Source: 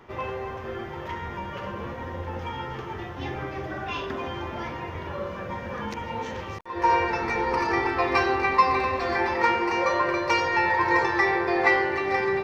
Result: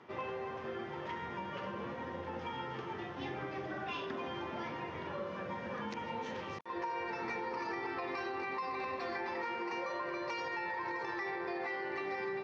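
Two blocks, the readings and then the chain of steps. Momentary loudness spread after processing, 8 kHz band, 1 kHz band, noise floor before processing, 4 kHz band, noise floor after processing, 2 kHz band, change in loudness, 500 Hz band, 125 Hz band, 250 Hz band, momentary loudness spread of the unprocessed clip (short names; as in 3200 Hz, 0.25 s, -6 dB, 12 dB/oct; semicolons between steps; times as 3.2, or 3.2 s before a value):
4 LU, n/a, -14.5 dB, -36 dBFS, -11.5 dB, -44 dBFS, -14.5 dB, -13.5 dB, -12.5 dB, -13.5 dB, -11.5 dB, 13 LU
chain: Chebyshev band-pass 170–5100 Hz, order 2; limiter -18 dBFS, peak gain reduction 9.5 dB; compressor 5:1, threshold -31 dBFS, peak gain reduction 8.5 dB; gain -5 dB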